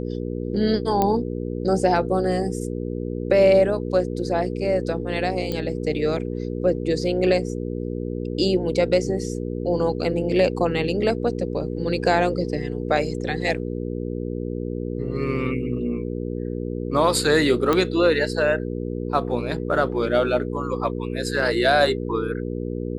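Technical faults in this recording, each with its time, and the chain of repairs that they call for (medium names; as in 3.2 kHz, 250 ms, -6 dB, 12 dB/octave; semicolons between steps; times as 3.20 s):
hum 60 Hz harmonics 8 -28 dBFS
1.02 s: pop -8 dBFS
5.52 s: pop -13 dBFS
17.73 s: pop -8 dBFS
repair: de-click; de-hum 60 Hz, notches 8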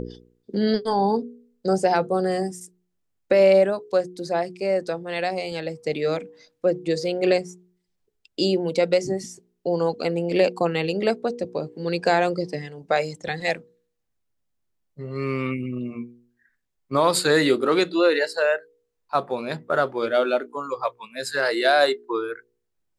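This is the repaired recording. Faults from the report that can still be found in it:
nothing left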